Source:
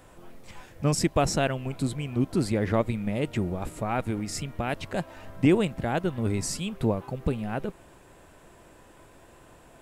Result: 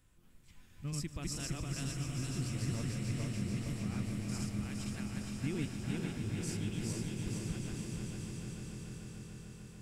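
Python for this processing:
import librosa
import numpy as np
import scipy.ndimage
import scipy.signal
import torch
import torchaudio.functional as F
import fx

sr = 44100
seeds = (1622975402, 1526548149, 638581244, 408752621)

y = fx.reverse_delay_fb(x, sr, ms=231, feedback_pct=72, wet_db=-0.5)
y = fx.tone_stack(y, sr, knobs='6-0-2')
y = fx.echo_swell(y, sr, ms=146, loudest=5, wet_db=-11)
y = y * librosa.db_to_amplitude(1.0)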